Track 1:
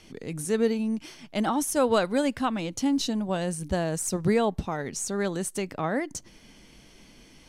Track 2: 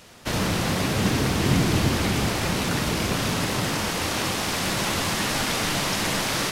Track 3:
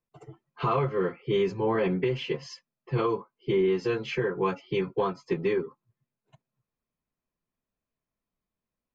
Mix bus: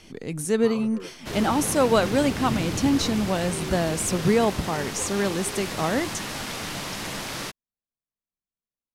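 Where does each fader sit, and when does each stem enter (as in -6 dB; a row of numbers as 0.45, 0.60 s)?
+3.0, -7.5, -13.0 dB; 0.00, 1.00, 0.00 s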